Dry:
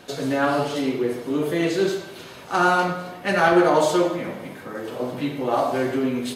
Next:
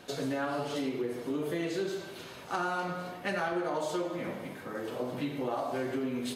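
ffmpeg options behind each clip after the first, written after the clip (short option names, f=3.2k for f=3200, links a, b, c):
-af "acompressor=threshold=-24dB:ratio=6,volume=-5.5dB"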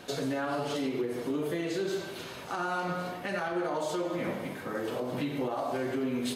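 -af "alimiter=level_in=3dB:limit=-24dB:level=0:latency=1:release=127,volume=-3dB,volume=4dB"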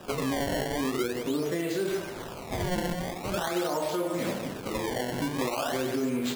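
-af "acrusher=samples=20:mix=1:aa=0.000001:lfo=1:lforange=32:lforate=0.44,volume=2.5dB"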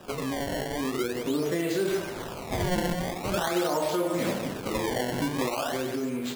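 -af "dynaudnorm=f=250:g=9:m=4.5dB,volume=-2dB"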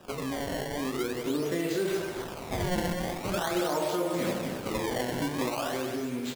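-filter_complex "[0:a]asplit=2[a][b];[b]acrusher=bits=5:mix=0:aa=0.000001,volume=-9dB[c];[a][c]amix=inputs=2:normalize=0,aecho=1:1:250:0.316,volume=-5dB"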